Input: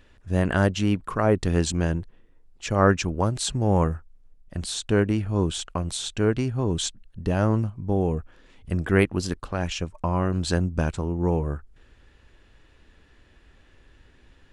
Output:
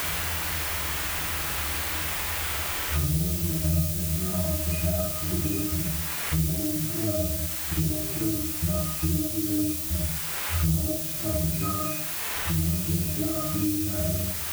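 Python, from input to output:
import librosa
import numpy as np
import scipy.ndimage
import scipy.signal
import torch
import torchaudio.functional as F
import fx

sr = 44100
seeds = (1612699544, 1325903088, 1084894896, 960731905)

y = np.flip(x).copy()
y = fx.rider(y, sr, range_db=10, speed_s=0.5)
y = fx.octave_resonator(y, sr, note='D#', decay_s=0.52)
y = fx.granulator(y, sr, seeds[0], grain_ms=100.0, per_s=20.0, spray_ms=35.0, spread_st=0)
y = fx.dmg_noise_colour(y, sr, seeds[1], colour='blue', level_db=-45.0)
y = fx.rev_schroeder(y, sr, rt60_s=0.45, comb_ms=38, drr_db=-1.5)
y = fx.band_squash(y, sr, depth_pct=100)
y = y * librosa.db_to_amplitude(9.0)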